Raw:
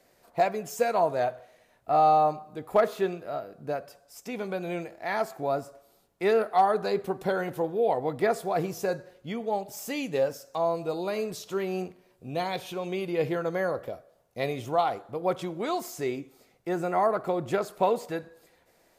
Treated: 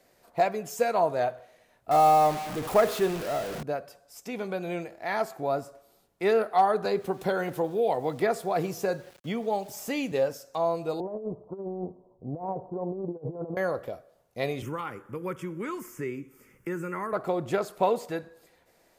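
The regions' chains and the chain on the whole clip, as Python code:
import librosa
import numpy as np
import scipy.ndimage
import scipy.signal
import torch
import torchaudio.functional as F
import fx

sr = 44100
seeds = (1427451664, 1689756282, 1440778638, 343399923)

y = fx.chain(x, sr, fx.zero_step(step_db=-30.5),
    fx.quant_companded(bits=6), at=(1.91, 3.63))
y = fx.chain(y, sr, fx.sample_gate(floor_db=-52.5),
    fx.band_squash(depth_pct=40), at=(6.85, 10.12))
y = fx.chain(y, sr, fx.steep_lowpass(hz=1000.0, slope=48),
    fx.over_compress(threshold_db=-33.0, ratio=-0.5), at=(11.0, 13.57))
y = fx.chain(y, sr, fx.fixed_phaser(hz=1700.0, stages=4),
    fx.band_squash(depth_pct=70), at=(14.62, 17.13))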